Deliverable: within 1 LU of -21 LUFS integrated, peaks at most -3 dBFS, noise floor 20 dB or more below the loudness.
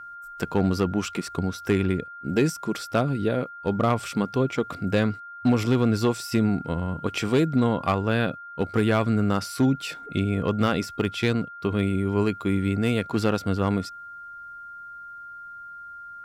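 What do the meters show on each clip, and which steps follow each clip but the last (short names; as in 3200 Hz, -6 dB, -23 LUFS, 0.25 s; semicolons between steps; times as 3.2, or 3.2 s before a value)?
clipped 0.3%; flat tops at -13.5 dBFS; steady tone 1400 Hz; tone level -38 dBFS; loudness -25.0 LUFS; peak -13.5 dBFS; loudness target -21.0 LUFS
-> clip repair -13.5 dBFS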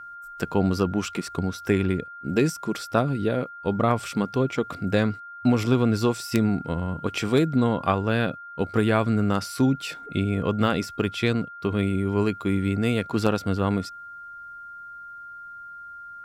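clipped 0.0%; steady tone 1400 Hz; tone level -38 dBFS
-> notch 1400 Hz, Q 30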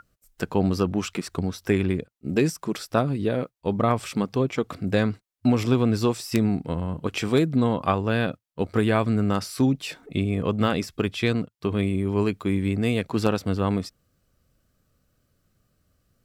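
steady tone none; loudness -25.0 LUFS; peak -5.0 dBFS; loudness target -21.0 LUFS
-> gain +4 dB; limiter -3 dBFS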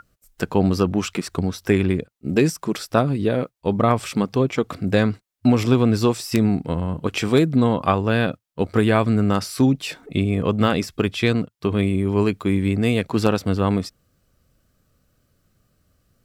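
loudness -21.0 LUFS; peak -3.0 dBFS; noise floor -70 dBFS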